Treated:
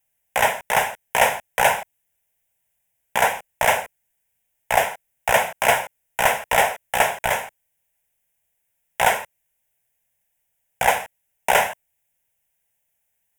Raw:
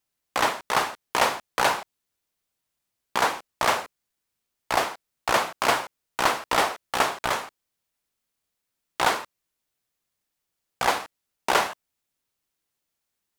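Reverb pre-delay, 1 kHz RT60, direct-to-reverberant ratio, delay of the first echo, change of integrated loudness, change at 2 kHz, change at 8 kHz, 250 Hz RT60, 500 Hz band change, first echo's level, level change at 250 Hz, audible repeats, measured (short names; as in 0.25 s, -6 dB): none, none, none, none, +4.5 dB, +5.5 dB, +5.5 dB, none, +5.5 dB, none, -3.5 dB, none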